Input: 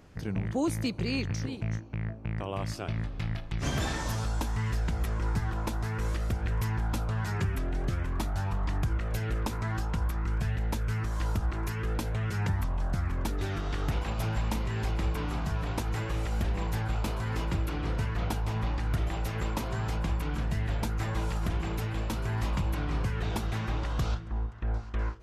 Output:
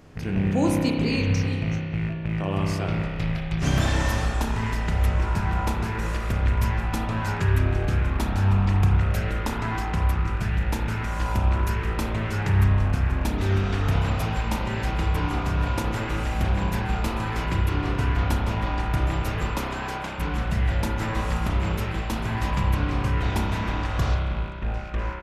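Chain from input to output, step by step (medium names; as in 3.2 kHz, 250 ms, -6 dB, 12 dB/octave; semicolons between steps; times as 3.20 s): rattle on loud lows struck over -38 dBFS, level -38 dBFS; 19.59–20.19 s: high-pass 300 Hz 12 dB/octave; echo from a far wall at 32 m, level -23 dB; spring tank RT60 2.1 s, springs 31 ms, chirp 55 ms, DRR -1 dB; trim +4 dB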